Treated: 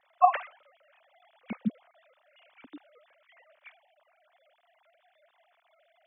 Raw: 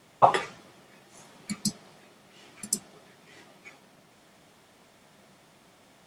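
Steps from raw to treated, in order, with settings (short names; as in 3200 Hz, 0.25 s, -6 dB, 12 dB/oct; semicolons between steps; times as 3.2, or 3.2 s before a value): sine-wave speech; gain -2 dB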